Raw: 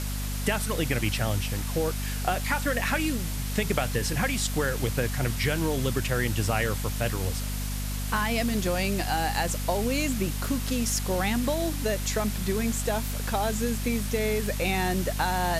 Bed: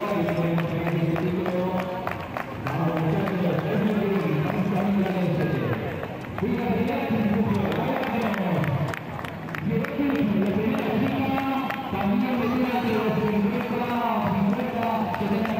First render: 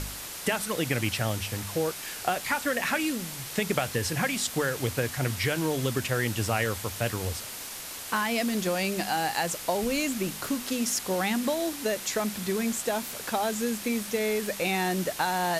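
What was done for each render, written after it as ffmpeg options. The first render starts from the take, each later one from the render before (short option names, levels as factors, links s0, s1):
-af "bandreject=f=50:t=h:w=4,bandreject=f=100:t=h:w=4,bandreject=f=150:t=h:w=4,bandreject=f=200:t=h:w=4,bandreject=f=250:t=h:w=4"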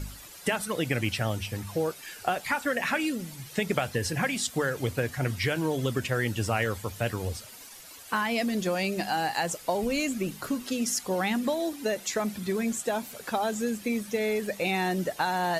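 -af "afftdn=nr=12:nf=-39"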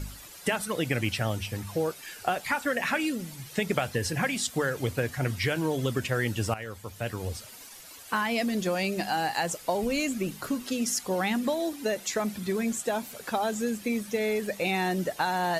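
-filter_complex "[0:a]asplit=2[s0][s1];[s0]atrim=end=6.54,asetpts=PTS-STARTPTS,afade=t=out:st=6.536:d=0.004:c=hsin:silence=0.211349[s2];[s1]atrim=start=6.54,asetpts=PTS-STARTPTS,afade=t=in:d=0.9:silence=0.211349[s3];[s2][s3]concat=n=2:v=0:a=1"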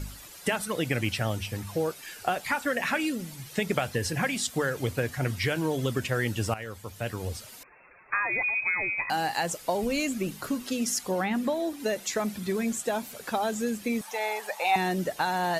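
-filter_complex "[0:a]asettb=1/sr,asplit=3[s0][s1][s2];[s0]atrim=end=7.634[s3];[s1]atrim=start=7.63:end=9.1,asetpts=PTS-STARTPTS,afade=t=in:d=0.004:c=qsin,afade=t=out:st=1.466:d=0.004:c=qsin,lowpass=f=2300:t=q:w=0.5098,lowpass=f=2300:t=q:w=0.6013,lowpass=f=2300:t=q:w=0.9,lowpass=f=2300:t=q:w=2.563,afreqshift=-2700[s4];[s2]atrim=start=9.096[s5];[s3][s4]acrossfade=d=0.004:c1=hsin:c2=qsin[s6];[s6][s5]acrossfade=d=0.004:c1=qsin:c2=hsin,asettb=1/sr,asplit=3[s7][s8][s9];[s7]atrim=end=11.114[s10];[s8]atrim=start=11.11:end=11.8,asetpts=PTS-STARTPTS,afade=t=in:d=0.004:c=qsin,afade=t=out:st=0.686:d=0.004:c=qsin,acrossover=split=2600[s11][s12];[s12]acompressor=threshold=0.00501:ratio=4:attack=1:release=60[s13];[s11][s13]amix=inputs=2:normalize=0[s14];[s9]atrim=start=11.796[s15];[s10][s14]acrossfade=d=0.004:c1=hsin:c2=qsin[s16];[s16][s15]acrossfade=d=0.004:c1=qsin:c2=hsin,asettb=1/sr,asplit=3[s17][s18][s19];[s17]atrim=end=14.014[s20];[s18]atrim=start=14.01:end=14.76,asetpts=PTS-STARTPTS,afade=t=in:d=0.004:c=qsin,afade=t=out:st=0.746:d=0.004:c=qsin,highpass=f=850:t=q:w=7.3[s21];[s19]atrim=start=14.756[s22];[s20][s21]acrossfade=d=0.004:c1=hsin:c2=qsin[s23];[s23][s22]acrossfade=d=0.004:c1=qsin:c2=hsin"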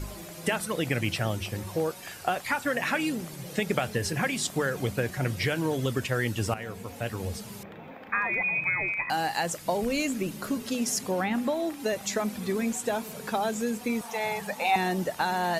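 -filter_complex "[1:a]volume=0.1[s0];[0:a][s0]amix=inputs=2:normalize=0"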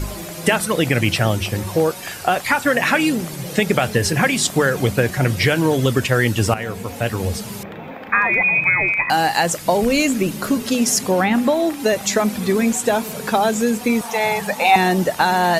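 -af "volume=3.55,alimiter=limit=0.708:level=0:latency=1"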